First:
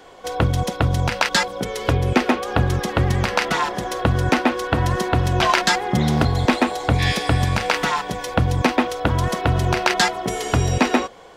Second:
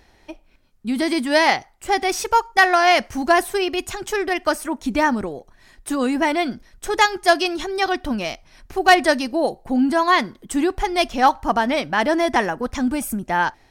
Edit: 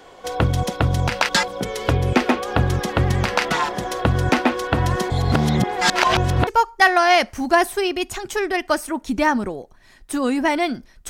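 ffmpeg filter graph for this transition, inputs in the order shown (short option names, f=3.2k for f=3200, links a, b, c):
-filter_complex "[0:a]apad=whole_dur=11.09,atrim=end=11.09,asplit=2[a][b];[a]atrim=end=5.102[c];[b]atrim=start=5.098:end=6.472,asetpts=PTS-STARTPTS,areverse[d];[1:a]atrim=start=2.238:end=6.86[e];[c][d]acrossfade=d=0.004:c1=hsin:c2=hsin[f];[f][e]acrossfade=d=0.004:c1=hsin:c2=hsin"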